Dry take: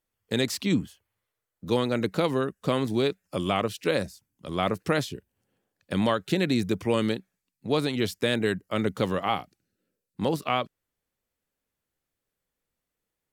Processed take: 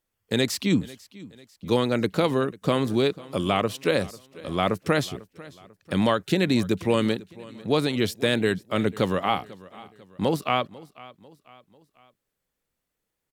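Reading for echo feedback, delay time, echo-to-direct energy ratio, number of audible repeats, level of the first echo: 46%, 495 ms, −19.5 dB, 3, −20.5 dB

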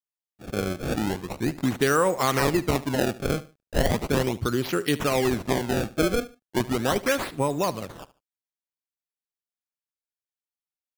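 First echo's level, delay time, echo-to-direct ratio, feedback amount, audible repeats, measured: −18.0 dB, 73 ms, −17.5 dB, 26%, 2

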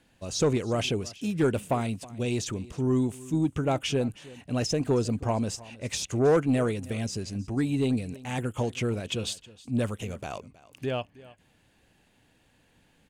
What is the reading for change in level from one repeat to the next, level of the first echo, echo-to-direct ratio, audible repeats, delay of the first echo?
repeats not evenly spaced, −20.0 dB, −20.0 dB, 1, 318 ms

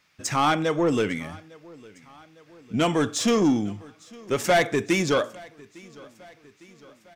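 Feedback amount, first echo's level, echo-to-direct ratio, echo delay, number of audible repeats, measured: 57%, −23.5 dB, −22.0 dB, 855 ms, 3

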